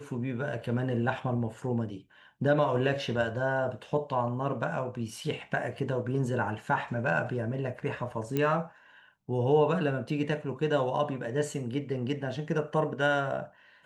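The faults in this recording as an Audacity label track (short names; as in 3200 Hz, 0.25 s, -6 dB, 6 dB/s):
8.370000	8.370000	pop -16 dBFS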